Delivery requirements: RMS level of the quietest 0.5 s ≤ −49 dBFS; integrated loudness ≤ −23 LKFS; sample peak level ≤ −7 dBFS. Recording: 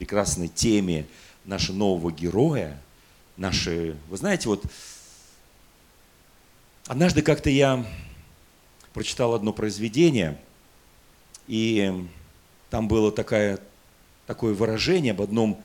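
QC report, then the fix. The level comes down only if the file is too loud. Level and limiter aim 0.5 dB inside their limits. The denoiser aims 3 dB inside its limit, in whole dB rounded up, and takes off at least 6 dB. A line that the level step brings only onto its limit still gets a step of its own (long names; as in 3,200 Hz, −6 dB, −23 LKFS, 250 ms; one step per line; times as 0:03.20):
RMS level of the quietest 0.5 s −56 dBFS: in spec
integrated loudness −24.5 LKFS: in spec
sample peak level −5.0 dBFS: out of spec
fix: brickwall limiter −7.5 dBFS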